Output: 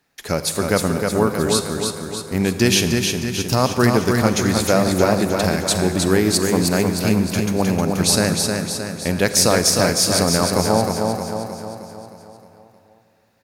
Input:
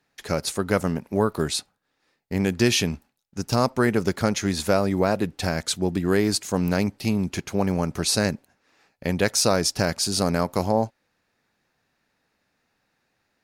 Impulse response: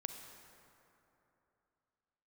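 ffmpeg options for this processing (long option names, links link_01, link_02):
-filter_complex "[0:a]aecho=1:1:311|622|933|1244|1555|1866|2177:0.596|0.322|0.174|0.0938|0.0506|0.0274|0.0148,asplit=2[link_01][link_02];[1:a]atrim=start_sample=2205,highshelf=frequency=8300:gain=11.5[link_03];[link_02][link_03]afir=irnorm=-1:irlink=0,volume=6dB[link_04];[link_01][link_04]amix=inputs=2:normalize=0,volume=-4.5dB"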